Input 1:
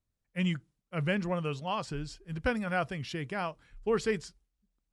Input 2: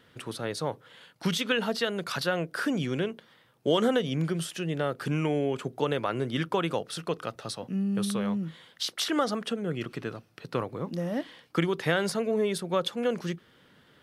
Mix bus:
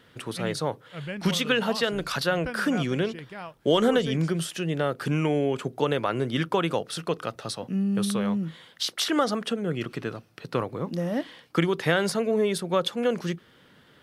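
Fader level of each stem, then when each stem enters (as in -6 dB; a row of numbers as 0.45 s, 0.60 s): -5.0 dB, +3.0 dB; 0.00 s, 0.00 s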